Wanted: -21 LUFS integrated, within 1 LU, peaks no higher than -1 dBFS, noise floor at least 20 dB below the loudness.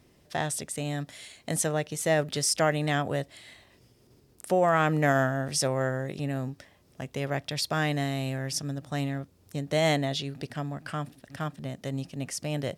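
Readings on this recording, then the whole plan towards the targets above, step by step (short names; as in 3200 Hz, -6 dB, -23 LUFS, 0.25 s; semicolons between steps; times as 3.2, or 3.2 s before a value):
loudness -29.0 LUFS; peak -12.0 dBFS; loudness target -21.0 LUFS
-> gain +8 dB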